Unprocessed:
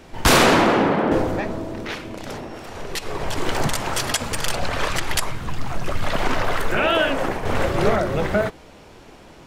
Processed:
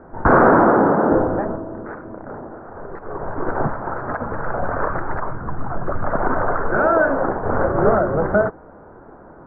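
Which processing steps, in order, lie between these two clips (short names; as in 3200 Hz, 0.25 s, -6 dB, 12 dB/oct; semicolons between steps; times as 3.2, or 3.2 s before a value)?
elliptic low-pass 1500 Hz, stop band 50 dB; low shelf 150 Hz -5 dB; 1.56–4.08 upward expander 1.5:1, over -28 dBFS; gain +4.5 dB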